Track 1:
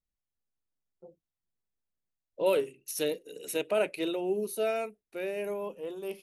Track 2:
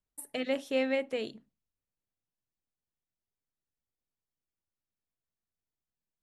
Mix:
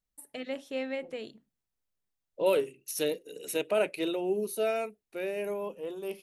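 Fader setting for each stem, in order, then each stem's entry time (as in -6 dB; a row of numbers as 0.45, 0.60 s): +0.5, -5.0 dB; 0.00, 0.00 s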